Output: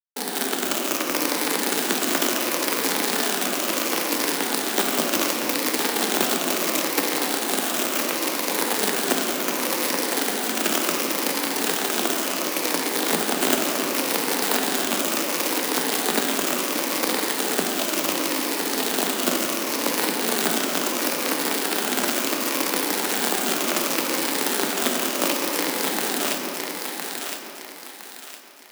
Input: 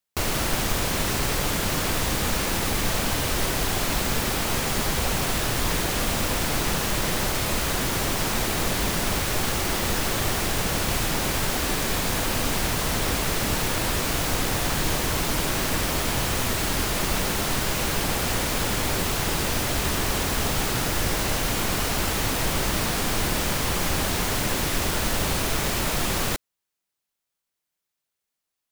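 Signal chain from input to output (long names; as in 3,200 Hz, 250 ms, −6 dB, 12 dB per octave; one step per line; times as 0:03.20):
rippled gain that drifts along the octave scale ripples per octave 0.77, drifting −0.7 Hz, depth 14 dB
high-pass filter 96 Hz 12 dB per octave
low-shelf EQ 480 Hz +7.5 dB
log-companded quantiser 2 bits
frequency shifter +160 Hz
on a send: feedback echo with a high-pass in the loop 1,011 ms, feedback 37%, high-pass 600 Hz, level −4 dB
on the sum: rectangular room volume 140 cubic metres, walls hard, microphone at 0.33 metres
level −7 dB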